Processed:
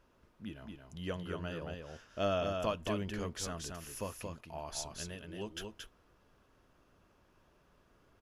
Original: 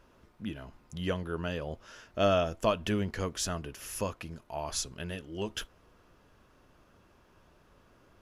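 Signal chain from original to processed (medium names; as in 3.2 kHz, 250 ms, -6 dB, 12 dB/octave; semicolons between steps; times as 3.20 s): delay 226 ms -4.5 dB; trim -7 dB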